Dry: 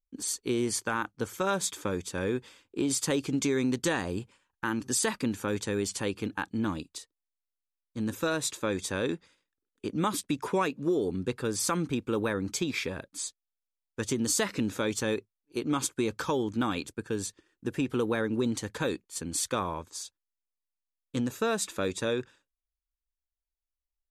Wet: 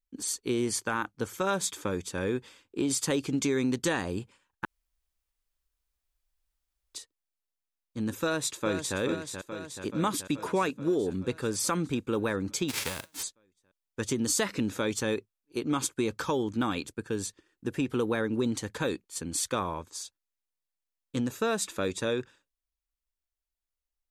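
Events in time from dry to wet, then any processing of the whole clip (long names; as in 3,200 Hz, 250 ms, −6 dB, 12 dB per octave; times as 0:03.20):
0:04.65–0:06.94: fill with room tone
0:08.22–0:08.98: delay throw 430 ms, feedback 70%, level −7.5 dB
0:12.68–0:13.22: spectral envelope flattened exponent 0.3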